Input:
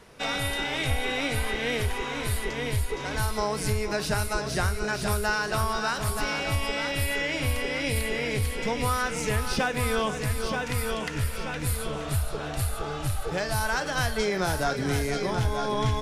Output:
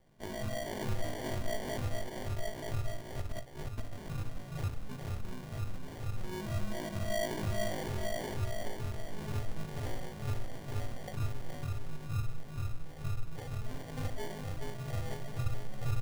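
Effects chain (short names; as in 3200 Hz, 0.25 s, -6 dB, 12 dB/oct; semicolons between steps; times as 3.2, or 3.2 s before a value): band shelf 7500 Hz -15.5 dB; resonator bank G#2 minor, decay 0.47 s; 3.19–3.83 negative-ratio compressor -44 dBFS, ratio -0.5; elliptic band-stop 140–2100 Hz; air absorption 93 m; notches 60/120 Hz; echo 0.421 s -6 dB; sample-and-hold 34×; gain +11 dB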